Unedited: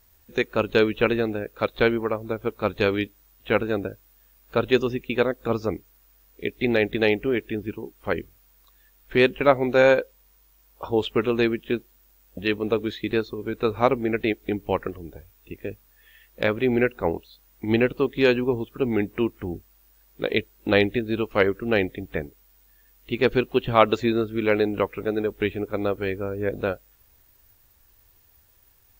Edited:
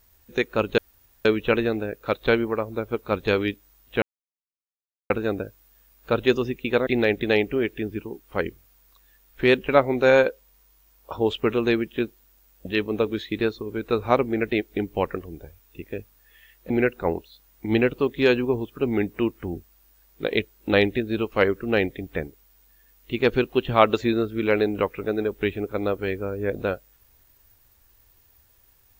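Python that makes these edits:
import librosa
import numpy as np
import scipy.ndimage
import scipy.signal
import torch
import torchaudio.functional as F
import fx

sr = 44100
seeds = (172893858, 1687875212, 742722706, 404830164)

y = fx.edit(x, sr, fx.insert_room_tone(at_s=0.78, length_s=0.47),
    fx.insert_silence(at_s=3.55, length_s=1.08),
    fx.cut(start_s=5.32, length_s=1.27),
    fx.cut(start_s=16.42, length_s=0.27), tone=tone)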